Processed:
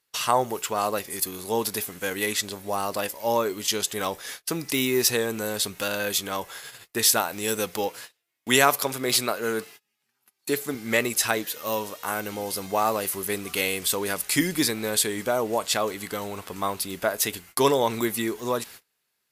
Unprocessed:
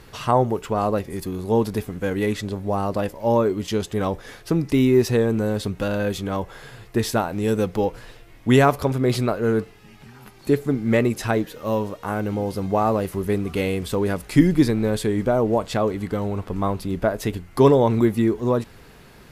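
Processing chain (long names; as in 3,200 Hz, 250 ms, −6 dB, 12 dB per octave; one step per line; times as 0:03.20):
0:07.88–0:10.75: high-pass filter 120 Hz 12 dB per octave
noise gate −40 dBFS, range −31 dB
spectral tilt +4.5 dB per octave
level −1 dB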